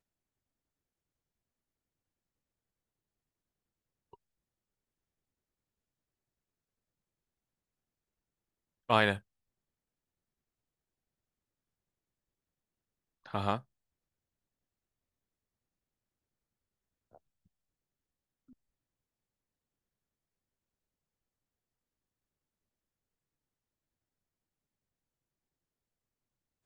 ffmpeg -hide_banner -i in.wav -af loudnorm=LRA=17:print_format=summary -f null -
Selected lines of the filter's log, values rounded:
Input Integrated:    -31.7 LUFS
Input True Peak:      -9.0 dBTP
Input LRA:             6.7 LU
Input Threshold:     -45.2 LUFS